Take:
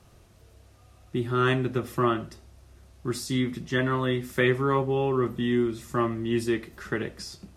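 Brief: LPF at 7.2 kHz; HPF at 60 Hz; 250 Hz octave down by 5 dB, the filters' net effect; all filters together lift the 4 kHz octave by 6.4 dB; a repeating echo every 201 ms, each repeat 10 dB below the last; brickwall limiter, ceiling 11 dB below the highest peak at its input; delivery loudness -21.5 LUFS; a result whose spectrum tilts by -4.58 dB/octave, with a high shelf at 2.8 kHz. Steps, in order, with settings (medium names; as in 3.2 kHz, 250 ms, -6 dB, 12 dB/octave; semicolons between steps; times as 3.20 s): high-pass 60 Hz; low-pass 7.2 kHz; peaking EQ 250 Hz -7 dB; treble shelf 2.8 kHz +6.5 dB; peaking EQ 4 kHz +3.5 dB; peak limiter -20.5 dBFS; feedback delay 201 ms, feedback 32%, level -10 dB; trim +9.5 dB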